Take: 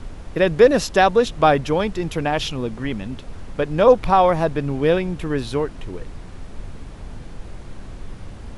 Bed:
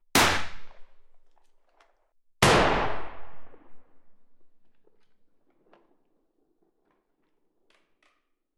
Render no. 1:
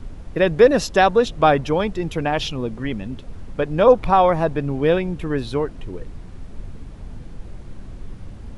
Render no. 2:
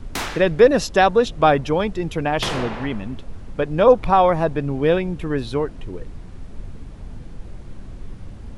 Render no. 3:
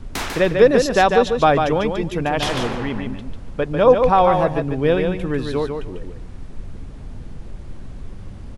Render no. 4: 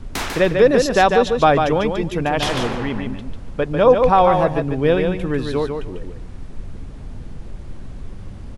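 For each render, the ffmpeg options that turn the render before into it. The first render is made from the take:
-af "afftdn=nr=6:nf=-37"
-filter_complex "[1:a]volume=0.447[s0];[0:a][s0]amix=inputs=2:normalize=0"
-af "aecho=1:1:146|292|438:0.531|0.0956|0.0172"
-af "volume=1.12,alimiter=limit=0.708:level=0:latency=1"

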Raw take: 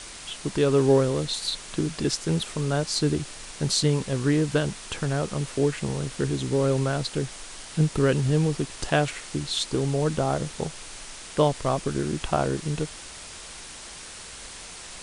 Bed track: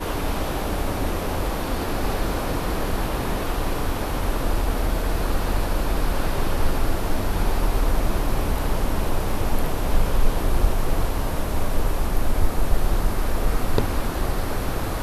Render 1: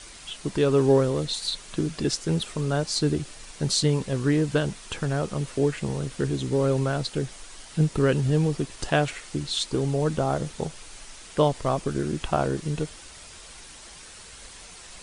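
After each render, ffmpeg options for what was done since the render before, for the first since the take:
-af "afftdn=nr=6:nf=-42"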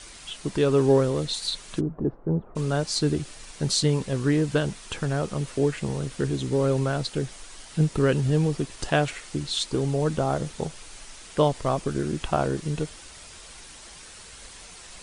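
-filter_complex "[0:a]asplit=3[s0][s1][s2];[s0]afade=t=out:st=1.79:d=0.02[s3];[s1]lowpass=f=1000:w=0.5412,lowpass=f=1000:w=1.3066,afade=t=in:st=1.79:d=0.02,afade=t=out:st=2.55:d=0.02[s4];[s2]afade=t=in:st=2.55:d=0.02[s5];[s3][s4][s5]amix=inputs=3:normalize=0"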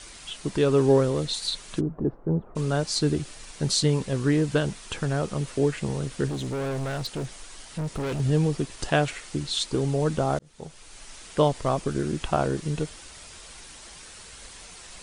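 -filter_complex "[0:a]asettb=1/sr,asplit=3[s0][s1][s2];[s0]atrim=end=6.284[s3];[s1]atrim=start=6.28:end=8.2,asetpts=PTS-STARTPTS,afade=t=in:d=0.004:c=qsin,afade=t=out:st=1.916:d=0.004:c=qsin,asoftclip=type=hard:threshold=0.0447[s4];[s2]atrim=start=8.196[s5];[s3][s4]acrossfade=d=0.004:c1=hsin:c2=qsin[s6];[s6][s5]acrossfade=d=0.004:c1=qsin:c2=hsin,asplit=2[s7][s8];[s7]atrim=end=10.39,asetpts=PTS-STARTPTS,afade=t=out:st=10.386:d=0.004:c=hsin[s9];[s8]atrim=start=10.39,asetpts=PTS-STARTPTS,afade=t=in:d=0.76[s10];[s9][s10]concat=n=2:v=0:a=1"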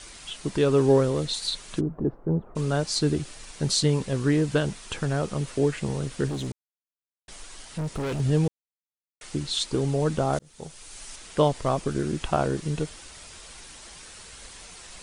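-filter_complex "[0:a]asettb=1/sr,asplit=3[s0][s1][s2];[s0]atrim=end=10.334[s3];[s1]atrim=start=10.33:end=11.16,asetpts=PTS-STARTPTS,afade=t=in:d=0.004:c=qsin,afade=t=out:st=0.826:d=0.004:c=qsin,highshelf=f=5100:g=7.5[s4];[s2]atrim=start=11.156[s5];[s3][s4]acrossfade=d=0.004:c1=hsin:c2=qsin[s6];[s6][s5]acrossfade=d=0.004:c1=qsin:c2=hsin,asplit=5[s7][s8][s9][s10][s11];[s7]atrim=end=6.52,asetpts=PTS-STARTPTS,afade=t=out:st=6.516:d=0.004:c=hsin[s12];[s8]atrim=start=6.52:end=7.28,asetpts=PTS-STARTPTS,volume=0[s13];[s9]atrim=start=7.28:end=8.48,asetpts=PTS-STARTPTS,afade=t=in:d=0.004:c=hsin,afade=t=out:st=1.196:d=0.004:c=hsin[s14];[s10]atrim=start=8.48:end=9.21,asetpts=PTS-STARTPTS,volume=0[s15];[s11]atrim=start=9.21,asetpts=PTS-STARTPTS,afade=t=in:d=0.004:c=hsin[s16];[s12][s13][s14][s15][s16]concat=n=5:v=0:a=1"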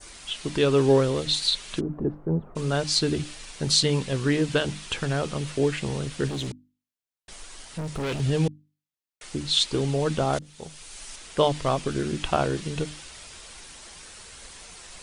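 -af "bandreject=f=50:t=h:w=6,bandreject=f=100:t=h:w=6,bandreject=f=150:t=h:w=6,bandreject=f=200:t=h:w=6,bandreject=f=250:t=h:w=6,bandreject=f=300:t=h:w=6,adynamicequalizer=threshold=0.00562:dfrequency=3100:dqfactor=0.87:tfrequency=3100:tqfactor=0.87:attack=5:release=100:ratio=0.375:range=3.5:mode=boostabove:tftype=bell"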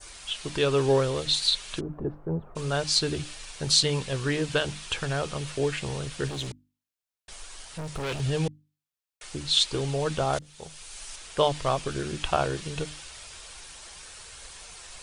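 -af "equalizer=f=240:t=o:w=1.3:g=-8,bandreject=f=2000:w=26"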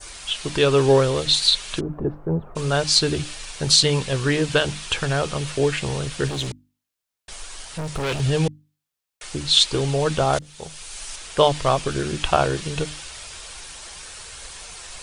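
-af "volume=2.11,alimiter=limit=0.891:level=0:latency=1"

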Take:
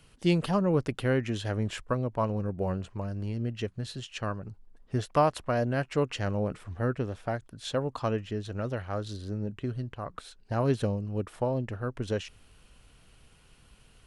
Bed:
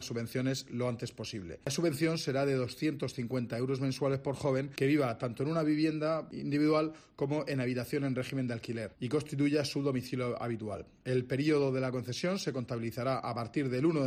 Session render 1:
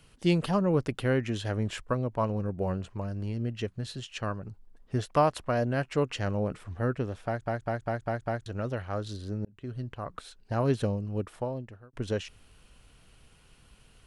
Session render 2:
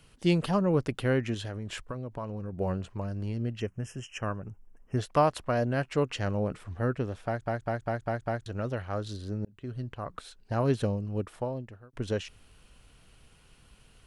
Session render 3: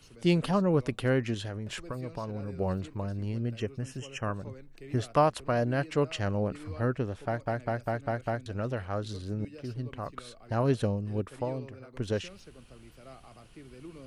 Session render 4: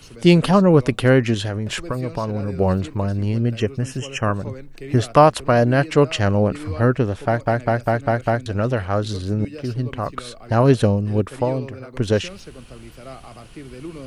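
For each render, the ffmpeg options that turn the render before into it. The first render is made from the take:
-filter_complex "[0:a]asplit=9[s0][s1][s2][s3][s4][s5][s6][s7][s8];[s0]atrim=end=7.462[s9];[s1]atrim=start=7.258:end=7.462[s10];[s2]atrim=start=7.258:end=7.462[s11];[s3]atrim=start=7.258:end=7.462[s12];[s4]atrim=start=7.258:end=7.462[s13];[s5]atrim=start=7.258:end=7.462[s14];[s6]atrim=start=8.458:end=9.45,asetpts=PTS-STARTPTS,afade=t=out:st=0.988:d=0.004:c=hsin[s15];[s7]atrim=start=9.45:end=11.93,asetpts=PTS-STARTPTS,afade=t=in:d=0.42,afade=t=out:st=1.73:d=0.75[s16];[s8]atrim=start=11.93,asetpts=PTS-STARTPTS,afade=t=in:d=0.004:c=hsin[s17];[s9][s10]acrossfade=d=0.004:c1=hsin:c2=hsin[s18];[s18][s11]acrossfade=d=0.004:c1=hsin:c2=hsin[s19];[s19][s12]acrossfade=d=0.004:c1=hsin:c2=hsin[s20];[s20][s13]acrossfade=d=0.004:c1=hsin:c2=hsin[s21];[s21][s14]acrossfade=d=0.004:c1=hsin:c2=hsin[s22];[s15][s16][s17]concat=n=3:v=0:a=1[s23];[s22][s23]acrossfade=d=0.004:c1=hsin:c2=hsin"
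-filter_complex "[0:a]asettb=1/sr,asplit=3[s0][s1][s2];[s0]atrim=end=1.344[s3];[s1]atrim=start=1.34:end=2.53,asetpts=PTS-STARTPTS,afade=t=in:d=0.004:c=qsin,afade=t=out:st=1.186:d=0.004:c=qsin,acompressor=threshold=0.0251:ratio=6:attack=3.2:release=140:knee=1:detection=peak[s4];[s2]atrim=start=2.526[s5];[s3][s4]acrossfade=d=0.004:c1=hsin:c2=qsin[s6];[s6][s5]acrossfade=d=0.004:c1=qsin:c2=hsin,asplit=3[s7][s8][s9];[s7]afade=t=out:st=3.59:d=0.02[s10];[s8]asuperstop=centerf=4000:order=12:qfactor=1.9,afade=t=in:st=3.59:d=0.02,afade=t=out:st=4.96:d=0.02[s11];[s9]afade=t=in:st=4.96:d=0.02[s12];[s10][s11][s12]amix=inputs=3:normalize=0"
-filter_complex "[1:a]volume=0.133[s0];[0:a][s0]amix=inputs=2:normalize=0"
-af "volume=3.98,alimiter=limit=0.891:level=0:latency=1"

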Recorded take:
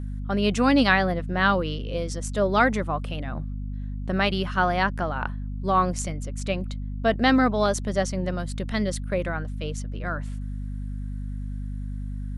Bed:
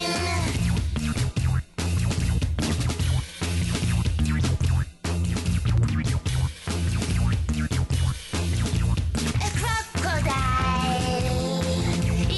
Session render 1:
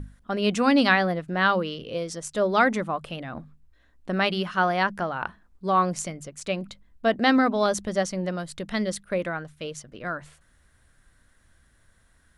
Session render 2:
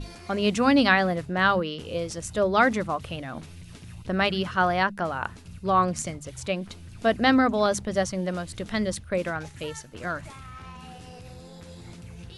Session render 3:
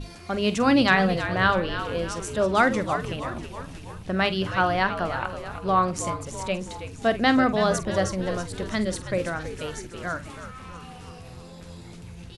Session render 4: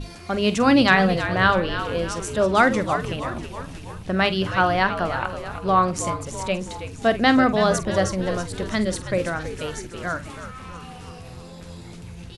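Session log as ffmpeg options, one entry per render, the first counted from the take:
-af "bandreject=f=50:t=h:w=6,bandreject=f=100:t=h:w=6,bandreject=f=150:t=h:w=6,bandreject=f=200:t=h:w=6,bandreject=f=250:t=h:w=6"
-filter_complex "[1:a]volume=0.106[s0];[0:a][s0]amix=inputs=2:normalize=0"
-filter_complex "[0:a]asplit=2[s0][s1];[s1]adelay=47,volume=0.211[s2];[s0][s2]amix=inputs=2:normalize=0,asplit=8[s3][s4][s5][s6][s7][s8][s9][s10];[s4]adelay=324,afreqshift=-83,volume=0.299[s11];[s5]adelay=648,afreqshift=-166,volume=0.174[s12];[s6]adelay=972,afreqshift=-249,volume=0.1[s13];[s7]adelay=1296,afreqshift=-332,volume=0.0582[s14];[s8]adelay=1620,afreqshift=-415,volume=0.0339[s15];[s9]adelay=1944,afreqshift=-498,volume=0.0195[s16];[s10]adelay=2268,afreqshift=-581,volume=0.0114[s17];[s3][s11][s12][s13][s14][s15][s16][s17]amix=inputs=8:normalize=0"
-af "volume=1.41"

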